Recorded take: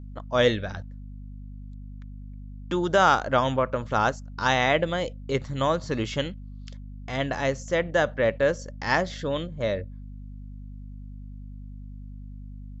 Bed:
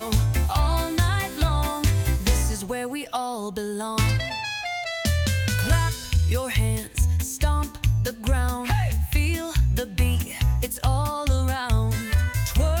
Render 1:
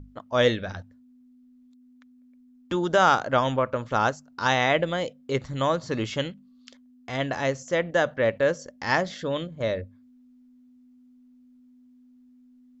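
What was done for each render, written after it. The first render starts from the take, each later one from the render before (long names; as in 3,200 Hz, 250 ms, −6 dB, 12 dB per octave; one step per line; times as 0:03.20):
mains-hum notches 50/100/150/200 Hz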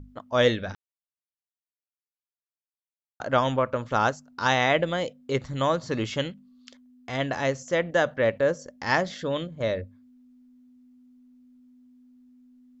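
0:00.75–0:03.20: silence
0:08.30–0:08.86: dynamic equaliser 3,000 Hz, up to −6 dB, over −43 dBFS, Q 0.73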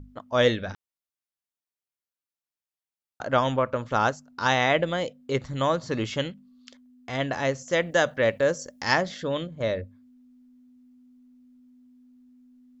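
0:07.71–0:08.94: high-shelf EQ 4,000 Hz +11 dB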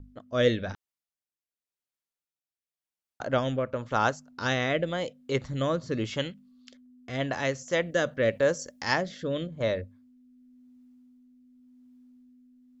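rotating-speaker cabinet horn 0.9 Hz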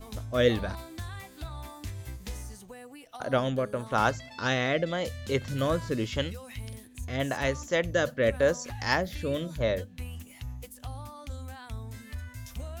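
mix in bed −17.5 dB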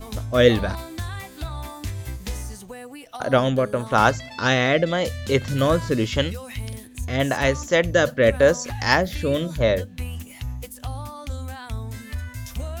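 level +8 dB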